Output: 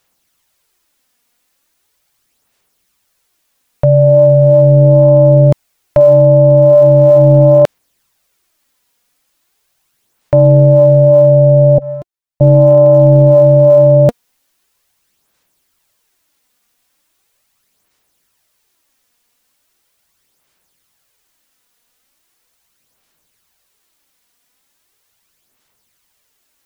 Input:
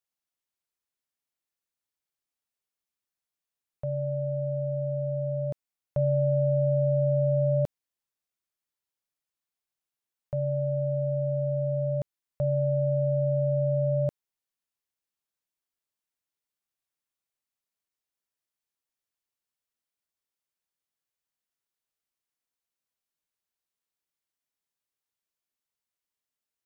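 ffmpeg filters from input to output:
-filter_complex "[0:a]asettb=1/sr,asplit=3[a][b][c];[a]atrim=end=11.784[d];[b]atrim=start=11.78:end=12.41,asetpts=PTS-STARTPTS,afade=t=in:d=0.004:c=qsin,afade=t=out:st=0.626:d=0.004:c=qsin,agate=range=-26dB:threshold=-24dB:ratio=16:detection=peak[e];[c]atrim=start=12.406[f];[d][e]acrossfade=d=0.004:c1=hsin:c2=qsin[g];[g][f]acrossfade=d=0.004:c1=qsin:c2=hsin,aphaser=in_gain=1:out_gain=1:delay=4.2:decay=0.41:speed=0.39:type=sinusoidal,apsyclip=27dB,volume=-1.5dB"

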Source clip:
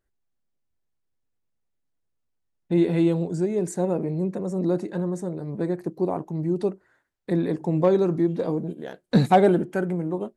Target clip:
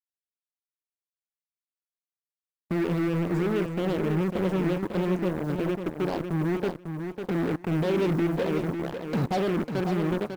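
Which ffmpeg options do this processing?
-filter_complex "[0:a]asettb=1/sr,asplit=3[a][b][c];[a]atrim=end=7.714[d];[b]atrim=start=7.71:end=8.28,asetpts=PTS-STARTPTS,afade=t=in:d=0.004:c=qsin,afade=t=out:st=0.566:d=0.004:c=qsin,aeval=exprs='val(0)+0.5*0.0355*sgn(val(0))':c=same[e];[c]atrim=start=8.276[f];[d][e]acrossfade=d=0.004:c1=hsin:c2=qsin[g];[g][f]acrossfade=d=0.004:c1=qsin:c2=hsin,lowpass=f=1k:p=1,asplit=2[h][i];[i]acompressor=threshold=-28dB:ratio=8,volume=0dB[j];[h][j]amix=inputs=2:normalize=0,alimiter=limit=-16dB:level=0:latency=1:release=24,acrusher=bits=8:mix=0:aa=0.000001,aeval=exprs='0.158*(cos(1*acos(clip(val(0)/0.158,-1,1)))-cos(1*PI/2))+0.0282*(cos(7*acos(clip(val(0)/0.158,-1,1)))-cos(7*PI/2))':c=same,asoftclip=type=tanh:threshold=-16.5dB,aeval=exprs='0.126*(cos(1*acos(clip(val(0)/0.126,-1,1)))-cos(1*PI/2))+0.00501*(cos(7*acos(clip(val(0)/0.126,-1,1)))-cos(7*PI/2))':c=same,aecho=1:1:548|1096|1644:0.447|0.0715|0.0114,volume=-2dB"

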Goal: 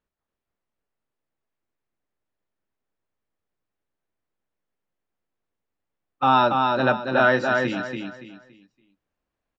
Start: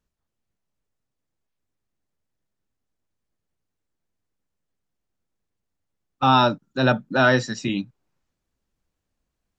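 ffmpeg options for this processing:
-af "bass=f=250:g=-9,treble=f=4k:g=-14,aecho=1:1:283|566|849|1132:0.631|0.189|0.0568|0.017"

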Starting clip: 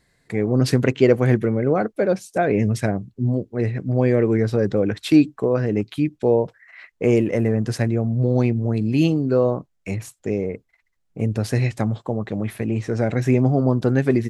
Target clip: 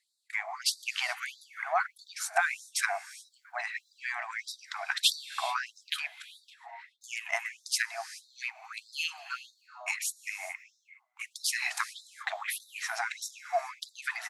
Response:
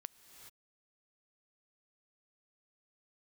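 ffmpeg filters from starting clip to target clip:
-filter_complex "[0:a]bandreject=f=50:t=h:w=6,bandreject=f=100:t=h:w=6,bandreject=f=150:t=h:w=6,bandreject=f=200:t=h:w=6,bandreject=f=250:t=h:w=6,bandreject=f=300:t=h:w=6,bandreject=f=350:t=h:w=6,bandreject=f=400:t=h:w=6,bandreject=f=450:t=h:w=6,bandreject=f=500:t=h:w=6,acompressor=threshold=-21dB:ratio=6,highpass=f=79:w=0.5412,highpass=f=79:w=1.3066,asplit=2[a][b];[b]adelay=1458,volume=-19dB,highshelf=f=4k:g=-32.8[c];[a][c]amix=inputs=2:normalize=0,agate=range=-16dB:threshold=-36dB:ratio=16:detection=peak,asplit=2[d][e];[1:a]atrim=start_sample=2205[f];[e][f]afir=irnorm=-1:irlink=0,volume=8.5dB[g];[d][g]amix=inputs=2:normalize=0,afftfilt=real='re*gte(b*sr/1024,620*pow(3600/620,0.5+0.5*sin(2*PI*1.6*pts/sr)))':imag='im*gte(b*sr/1024,620*pow(3600/620,0.5+0.5*sin(2*PI*1.6*pts/sr)))':win_size=1024:overlap=0.75"

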